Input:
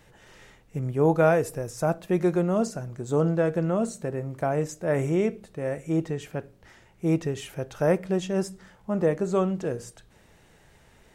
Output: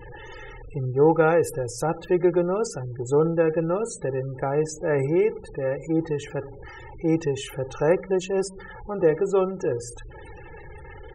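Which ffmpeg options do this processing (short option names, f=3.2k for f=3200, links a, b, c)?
-af "aeval=exprs='val(0)+0.5*0.0133*sgn(val(0))':c=same,aecho=1:1:2.3:0.74,afftfilt=real='re*gte(hypot(re,im),0.0158)':imag='im*gte(hypot(re,im),0.0158)':win_size=1024:overlap=0.75"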